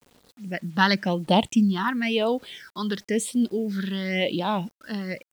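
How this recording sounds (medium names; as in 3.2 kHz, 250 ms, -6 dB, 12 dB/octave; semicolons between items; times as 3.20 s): phasing stages 6, 0.96 Hz, lowest notch 610–1900 Hz; a quantiser's noise floor 10-bit, dither none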